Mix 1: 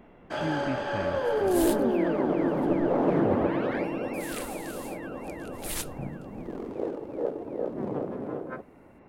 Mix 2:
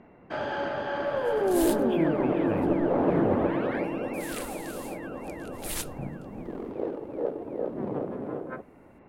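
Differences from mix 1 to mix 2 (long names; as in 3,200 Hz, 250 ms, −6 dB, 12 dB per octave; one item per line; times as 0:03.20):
speech: entry +1.55 s
first sound: add low-pass filter 3,900 Hz 12 dB per octave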